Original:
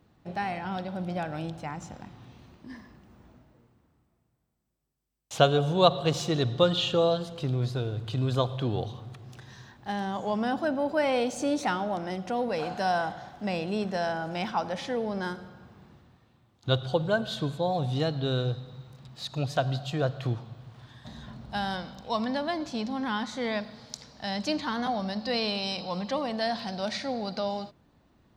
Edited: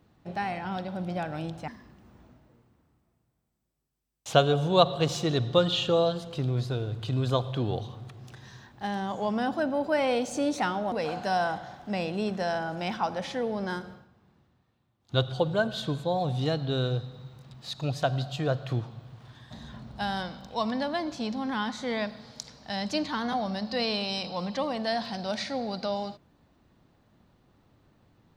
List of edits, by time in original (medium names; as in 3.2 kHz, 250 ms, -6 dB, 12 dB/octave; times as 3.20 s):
1.68–2.73 s: delete
11.97–12.46 s: delete
15.46–16.69 s: dip -10 dB, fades 0.16 s